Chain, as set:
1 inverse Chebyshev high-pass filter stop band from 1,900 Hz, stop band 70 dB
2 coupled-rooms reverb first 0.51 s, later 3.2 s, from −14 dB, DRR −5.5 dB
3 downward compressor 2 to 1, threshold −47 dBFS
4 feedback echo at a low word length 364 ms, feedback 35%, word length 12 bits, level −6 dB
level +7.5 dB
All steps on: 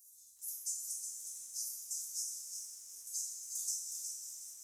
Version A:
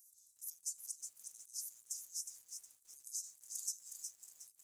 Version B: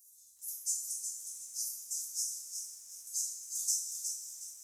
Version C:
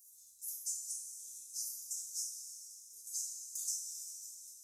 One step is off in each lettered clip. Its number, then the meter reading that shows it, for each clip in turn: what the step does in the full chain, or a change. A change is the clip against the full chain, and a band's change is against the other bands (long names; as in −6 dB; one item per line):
2, change in momentary loudness spread +4 LU
3, change in integrated loudness +3.5 LU
4, change in momentary loudness spread +2 LU